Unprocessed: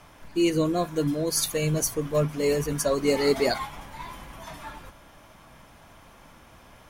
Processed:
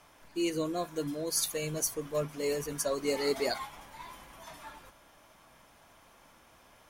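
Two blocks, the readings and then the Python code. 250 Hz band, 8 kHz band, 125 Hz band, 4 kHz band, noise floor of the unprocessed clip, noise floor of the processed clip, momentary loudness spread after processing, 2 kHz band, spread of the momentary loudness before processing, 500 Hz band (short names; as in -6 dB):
-9.5 dB, -4.0 dB, -13.0 dB, -5.5 dB, -52 dBFS, -60 dBFS, 17 LU, -7.0 dB, 17 LU, -7.5 dB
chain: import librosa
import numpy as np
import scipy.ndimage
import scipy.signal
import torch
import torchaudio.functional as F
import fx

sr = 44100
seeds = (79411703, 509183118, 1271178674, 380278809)

y = fx.bass_treble(x, sr, bass_db=-7, treble_db=3)
y = y * librosa.db_to_amplitude(-7.0)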